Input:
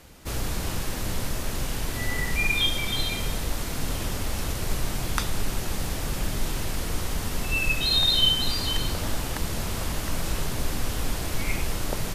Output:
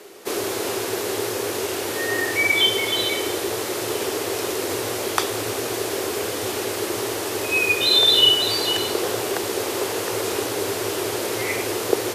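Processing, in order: frequency shift -120 Hz; resonant high-pass 390 Hz, resonance Q 4.4; trim +6 dB

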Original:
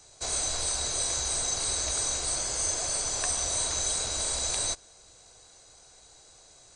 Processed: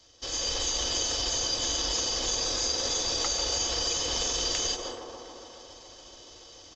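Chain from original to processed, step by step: on a send at -10.5 dB: reverberation RT60 0.85 s, pre-delay 110 ms; on the sum: level rider gain up to 9 dB; feedback echo behind a band-pass 141 ms, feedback 76%, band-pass 700 Hz, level -5.5 dB; compression 4:1, threshold -22 dBFS, peak gain reduction 6 dB; pitch shift -4.5 st; comb of notches 200 Hz; trim -2.5 dB

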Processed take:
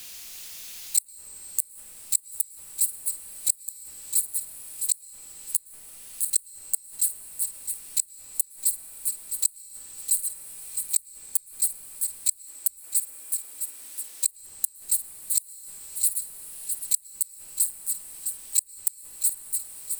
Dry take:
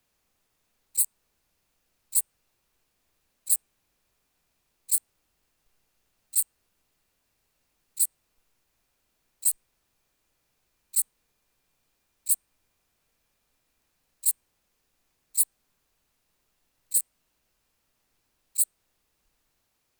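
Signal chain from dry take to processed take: backward echo that repeats 329 ms, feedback 43%, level -6 dB; 12.31–14.27 s: Chebyshev high-pass 250 Hz, order 10; flutter echo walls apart 8.9 m, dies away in 0.24 s; in parallel at 0 dB: peak limiter -15.5 dBFS, peak gain reduction 9.5 dB; on the sum: inverted gate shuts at -13 dBFS, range -37 dB; on a send at -17 dB: reverberation RT60 4.4 s, pre-delay 103 ms; on the sum: three bands compressed up and down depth 70%; trim +8 dB

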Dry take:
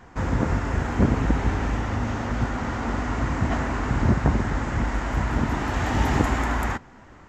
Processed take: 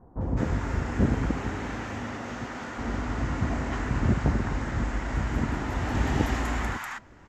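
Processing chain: 1.28–2.77 s: high-pass 120 Hz -> 460 Hz 6 dB/octave; bands offset in time lows, highs 210 ms, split 910 Hz; trim -3.5 dB

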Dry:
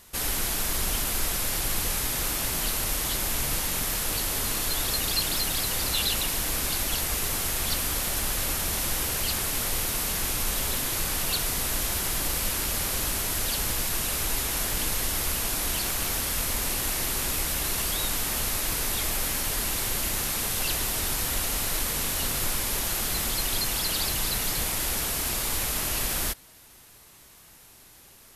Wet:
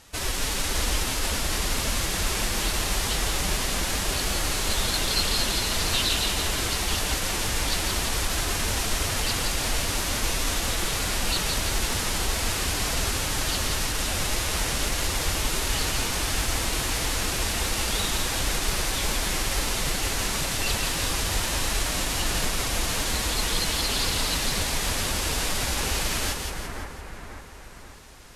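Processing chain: low-pass 7.8 kHz 12 dB/octave; formant-preserving pitch shift +4.5 st; on a send: two-band feedback delay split 2.1 kHz, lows 537 ms, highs 170 ms, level -4.5 dB; on the sum: trim +3 dB

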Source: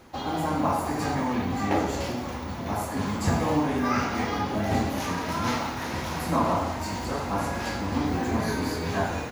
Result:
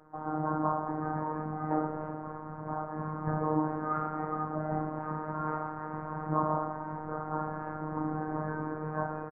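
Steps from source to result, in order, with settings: steep low-pass 1.4 kHz 36 dB/octave; bass shelf 460 Hz -5.5 dB; comb 5.8 ms, depth 34%; robot voice 154 Hz; trim -1 dB

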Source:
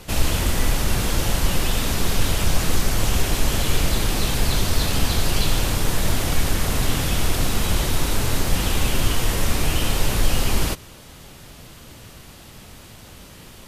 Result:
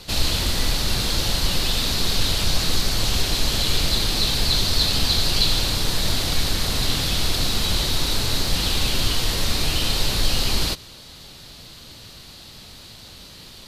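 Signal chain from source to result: peaking EQ 4.2 kHz +14 dB 0.7 oct; trim -3 dB

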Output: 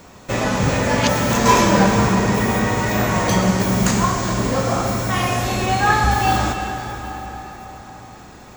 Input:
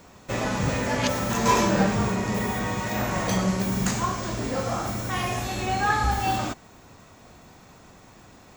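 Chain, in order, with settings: plate-style reverb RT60 4.7 s, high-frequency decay 0.7×, pre-delay 105 ms, DRR 5 dB; trim +6.5 dB

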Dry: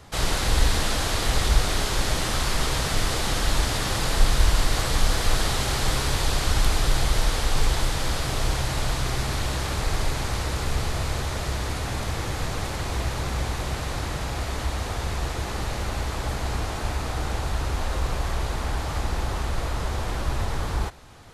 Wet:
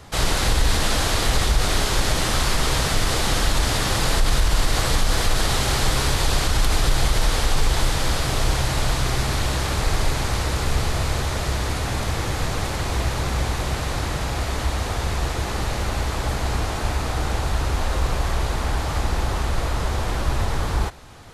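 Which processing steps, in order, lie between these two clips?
peak limiter -13 dBFS, peak gain reduction 7.5 dB; trim +4 dB

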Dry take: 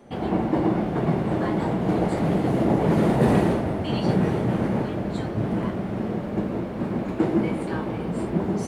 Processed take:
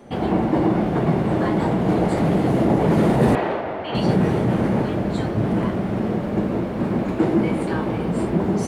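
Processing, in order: 3.35–3.95 s: three-band isolator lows -17 dB, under 430 Hz, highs -23 dB, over 3.8 kHz; in parallel at -2 dB: peak limiter -18.5 dBFS, peak gain reduction 11 dB

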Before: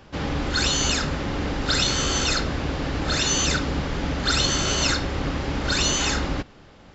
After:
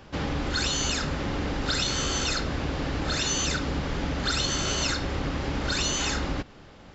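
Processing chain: compression 2:1, threshold -27 dBFS, peak gain reduction 5.5 dB

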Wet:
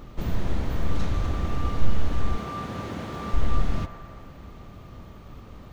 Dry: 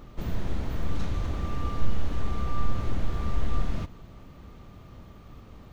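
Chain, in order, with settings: 2.37–3.34 s: high-pass 150 Hz 12 dB/octave; on a send: feedback echo behind a band-pass 112 ms, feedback 74%, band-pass 1 kHz, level -9 dB; on the sum: trim +3.5 dB

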